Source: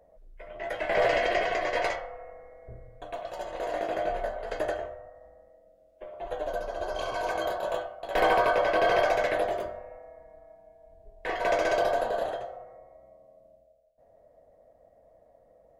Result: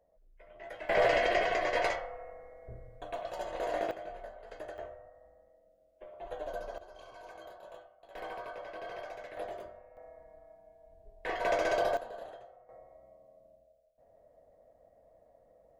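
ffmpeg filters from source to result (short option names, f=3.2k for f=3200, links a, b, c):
-af "asetnsamples=n=441:p=0,asendcmd='0.89 volume volume -2dB;3.91 volume volume -14dB;4.78 volume volume -7dB;6.78 volume volume -19.5dB;9.37 volume volume -12dB;9.97 volume volume -4dB;11.97 volume volume -15dB;12.69 volume volume -3.5dB',volume=-11.5dB"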